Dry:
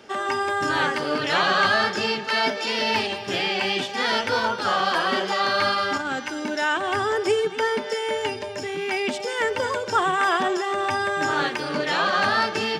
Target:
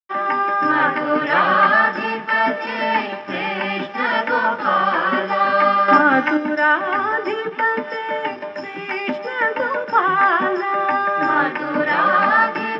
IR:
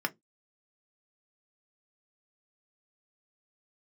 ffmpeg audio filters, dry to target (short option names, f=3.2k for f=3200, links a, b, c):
-filter_complex "[0:a]asettb=1/sr,asplit=3[a][b][c];[a]atrim=end=5.884[d];[b]atrim=start=5.88:end=6.37,asetpts=PTS-STARTPTS,afade=t=in:d=0.004:c=qsin,afade=t=out:st=0.486:d=0.004:c=qsin,acontrast=87[e];[c]atrim=start=6.366[f];[d][e]acrossfade=d=0.004:c1=hsin:c2=qsin[g];[g][f]acrossfade=d=0.004:c1=qsin:c2=hsin,asettb=1/sr,asplit=3[h][i][j];[h]atrim=end=8.524[k];[i]atrim=start=8.52:end=9.11,asetpts=PTS-STARTPTS,afade=t=in:d=0.004:c=qsin,afade=t=out:st=0.586:d=0.004:c=qsin,aemphasis=mode=production:type=cd[l];[j]atrim=start=9.106[m];[k][l]acrossfade=d=0.004:c1=hsin:c2=qsin[n];[n][m]acrossfade=d=0.004:c1=qsin:c2=hsin,aeval=exprs='sgn(val(0))*max(abs(val(0))-0.0133,0)':c=same,highpass=150,lowpass=2.4k[o];[1:a]atrim=start_sample=2205[p];[o][p]afir=irnorm=-1:irlink=0"